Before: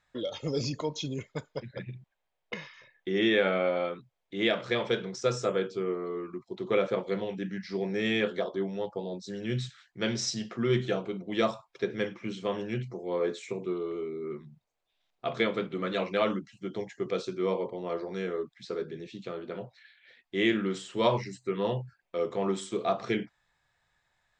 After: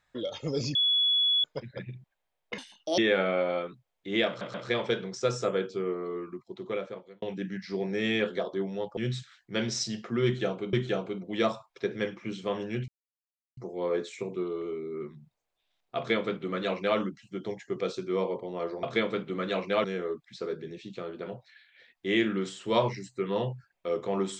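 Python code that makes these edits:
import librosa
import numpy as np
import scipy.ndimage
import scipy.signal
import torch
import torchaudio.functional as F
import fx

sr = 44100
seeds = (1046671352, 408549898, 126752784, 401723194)

y = fx.edit(x, sr, fx.bleep(start_s=0.75, length_s=0.69, hz=3390.0, db=-21.5),
    fx.speed_span(start_s=2.58, length_s=0.67, speed=1.67),
    fx.stutter(start_s=4.55, slice_s=0.13, count=3),
    fx.fade_out_span(start_s=6.22, length_s=1.01),
    fx.cut(start_s=8.98, length_s=0.46),
    fx.repeat(start_s=10.72, length_s=0.48, count=2),
    fx.insert_silence(at_s=12.87, length_s=0.69),
    fx.duplicate(start_s=15.27, length_s=1.01, to_s=18.13), tone=tone)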